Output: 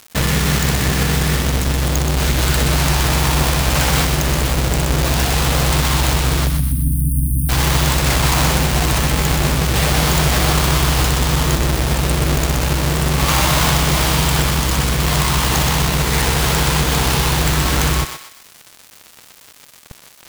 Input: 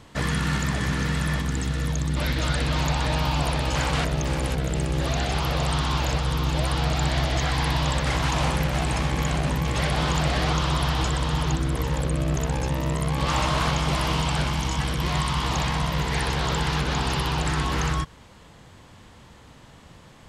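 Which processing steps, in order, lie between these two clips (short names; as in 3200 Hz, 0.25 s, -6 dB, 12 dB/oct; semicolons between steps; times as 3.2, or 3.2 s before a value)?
half-waves squared off; high shelf 2200 Hz +6.5 dB; in parallel at +1.5 dB: compressor, threshold -26 dBFS, peak gain reduction 11.5 dB; on the sum: bit-crush 5-bit; spectral delete 6.47–7.49, 310–8600 Hz; on a send: thinning echo 0.125 s, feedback 39%, high-pass 770 Hz, level -6 dB; on the sum: gain -1 dB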